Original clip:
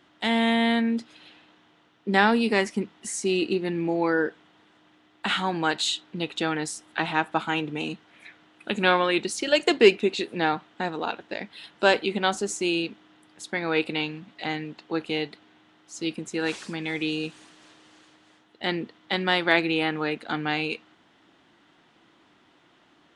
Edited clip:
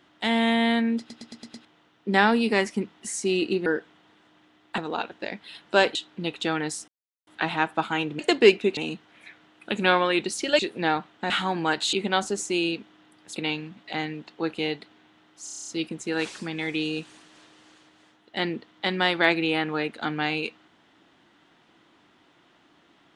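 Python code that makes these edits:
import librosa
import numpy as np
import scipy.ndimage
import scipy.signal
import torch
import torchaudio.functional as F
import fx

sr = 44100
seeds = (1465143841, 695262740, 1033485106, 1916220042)

y = fx.edit(x, sr, fx.stutter_over(start_s=0.99, slice_s=0.11, count=6),
    fx.cut(start_s=3.66, length_s=0.5),
    fx.swap(start_s=5.28, length_s=0.63, other_s=10.87, other_length_s=1.17),
    fx.insert_silence(at_s=6.84, length_s=0.39),
    fx.move(start_s=9.58, length_s=0.58, to_s=7.76),
    fx.cut(start_s=13.47, length_s=0.4),
    fx.stutter(start_s=15.95, slice_s=0.03, count=9), tone=tone)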